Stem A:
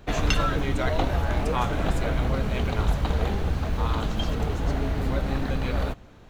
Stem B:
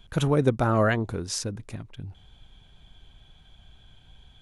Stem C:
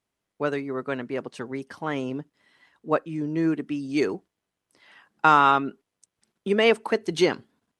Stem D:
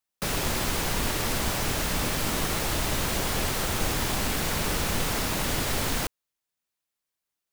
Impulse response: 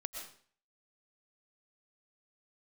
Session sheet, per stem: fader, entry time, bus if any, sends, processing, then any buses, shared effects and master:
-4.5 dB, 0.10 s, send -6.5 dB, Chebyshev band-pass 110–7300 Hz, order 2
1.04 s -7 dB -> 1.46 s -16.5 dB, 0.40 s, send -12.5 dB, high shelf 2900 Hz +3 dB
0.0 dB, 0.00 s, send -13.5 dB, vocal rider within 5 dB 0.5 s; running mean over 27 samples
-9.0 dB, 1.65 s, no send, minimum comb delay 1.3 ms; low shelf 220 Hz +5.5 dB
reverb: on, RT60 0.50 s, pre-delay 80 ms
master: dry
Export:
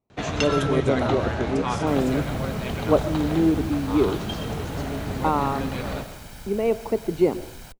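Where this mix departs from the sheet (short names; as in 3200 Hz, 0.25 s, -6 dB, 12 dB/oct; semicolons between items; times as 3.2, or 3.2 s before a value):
stem D -9.0 dB -> -15.0 dB; reverb return +6.5 dB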